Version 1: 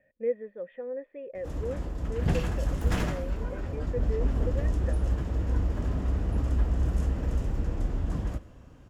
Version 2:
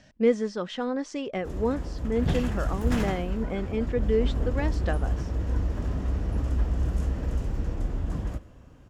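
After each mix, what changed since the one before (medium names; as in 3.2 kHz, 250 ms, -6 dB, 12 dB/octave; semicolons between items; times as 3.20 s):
speech: remove cascade formant filter e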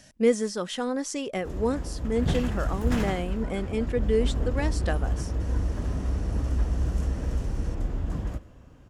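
speech: remove distance through air 160 m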